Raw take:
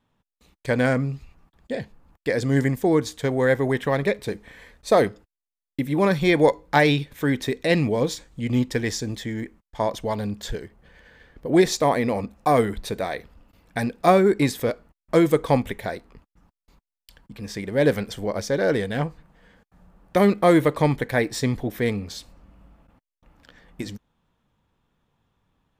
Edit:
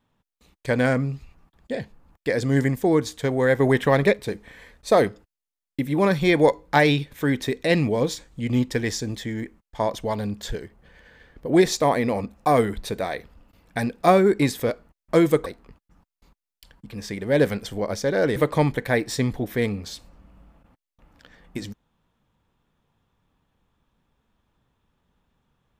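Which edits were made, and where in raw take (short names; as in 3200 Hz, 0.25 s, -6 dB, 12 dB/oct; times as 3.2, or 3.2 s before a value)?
3.6–4.13 gain +4 dB
15.46–15.92 cut
18.82–20.6 cut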